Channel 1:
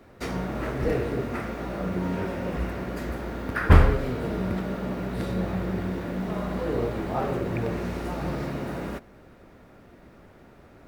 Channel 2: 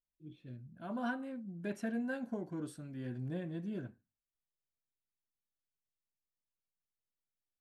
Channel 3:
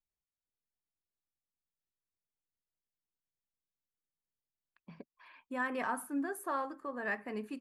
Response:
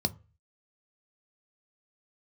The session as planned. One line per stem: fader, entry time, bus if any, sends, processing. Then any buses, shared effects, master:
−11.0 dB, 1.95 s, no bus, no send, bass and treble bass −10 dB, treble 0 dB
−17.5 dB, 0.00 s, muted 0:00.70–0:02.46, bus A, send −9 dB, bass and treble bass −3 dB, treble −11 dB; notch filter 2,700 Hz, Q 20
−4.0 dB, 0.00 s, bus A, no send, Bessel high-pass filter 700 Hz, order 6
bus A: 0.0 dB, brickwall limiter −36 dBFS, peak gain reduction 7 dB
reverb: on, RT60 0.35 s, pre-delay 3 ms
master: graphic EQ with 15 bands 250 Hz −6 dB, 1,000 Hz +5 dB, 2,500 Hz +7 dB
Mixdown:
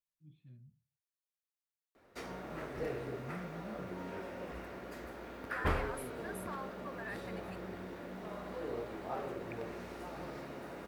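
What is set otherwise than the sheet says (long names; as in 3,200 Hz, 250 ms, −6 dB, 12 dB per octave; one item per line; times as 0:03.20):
stem 2 −17.5 dB → −11.0 dB
master: missing graphic EQ with 15 bands 250 Hz −6 dB, 1,000 Hz +5 dB, 2,500 Hz +7 dB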